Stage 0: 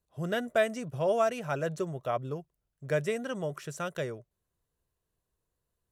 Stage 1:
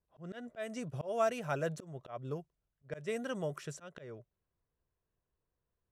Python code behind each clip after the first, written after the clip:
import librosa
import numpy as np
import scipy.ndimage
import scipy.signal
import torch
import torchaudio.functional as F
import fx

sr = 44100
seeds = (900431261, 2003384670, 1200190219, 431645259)

y = fx.auto_swell(x, sr, attack_ms=229.0)
y = fx.env_lowpass(y, sr, base_hz=2300.0, full_db=-32.5)
y = y * 10.0 ** (-3.0 / 20.0)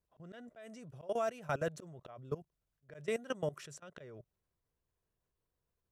y = fx.level_steps(x, sr, step_db=18)
y = y * 10.0 ** (3.5 / 20.0)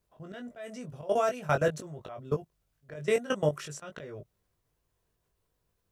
y = fx.doubler(x, sr, ms=20.0, db=-4.5)
y = y * 10.0 ** (7.5 / 20.0)